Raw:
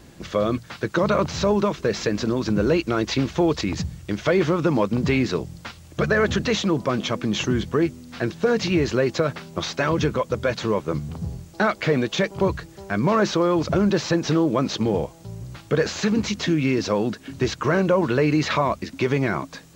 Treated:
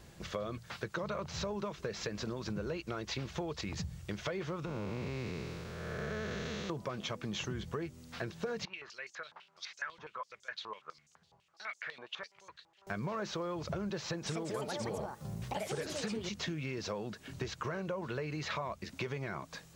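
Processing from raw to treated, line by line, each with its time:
0:04.65–0:06.70: spectrum smeared in time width 499 ms
0:08.65–0:12.87: band-pass on a step sequencer 12 Hz 950–6,500 Hz
0:13.98–0:16.69: delay with pitch and tempo change per echo 280 ms, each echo +5 semitones, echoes 2
whole clip: parametric band 280 Hz −9.5 dB 0.54 octaves; downward compressor, threshold −28 dBFS; level −7 dB

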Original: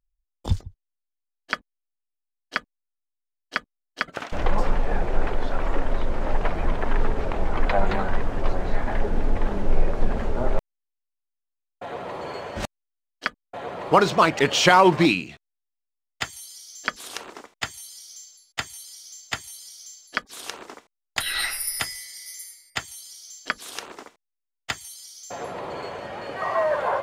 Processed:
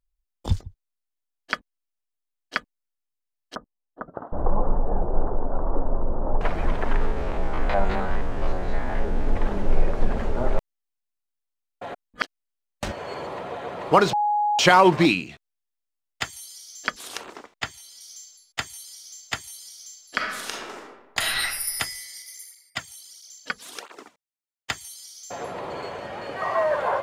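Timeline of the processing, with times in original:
0:03.55–0:06.41: inverse Chebyshev low-pass filter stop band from 2,200 Hz
0:06.96–0:09.27: spectrum averaged block by block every 50 ms
0:11.93–0:13.55: reverse
0:14.13–0:14.59: beep over 833 Hz −19 dBFS
0:17.36–0:18.01: parametric band 11,000 Hz −8 dB 1.3 octaves
0:20.04–0:21.27: thrown reverb, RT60 1.1 s, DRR −1 dB
0:22.22–0:24.70: through-zero flanger with one copy inverted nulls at 1.5 Hz, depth 3.5 ms

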